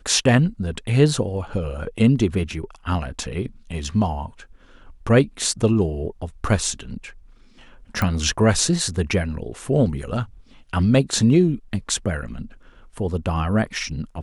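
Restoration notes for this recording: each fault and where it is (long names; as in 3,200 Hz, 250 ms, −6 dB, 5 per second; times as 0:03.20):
0:08.02: click −10 dBFS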